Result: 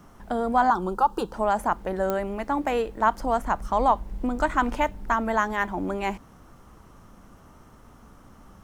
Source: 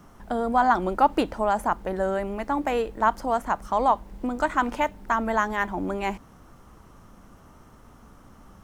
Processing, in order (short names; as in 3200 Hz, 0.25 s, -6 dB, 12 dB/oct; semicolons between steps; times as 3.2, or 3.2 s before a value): 0.7–1.34 fixed phaser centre 420 Hz, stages 8; 3.2–5.14 low shelf 99 Hz +10 dB; pops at 2.1, -13 dBFS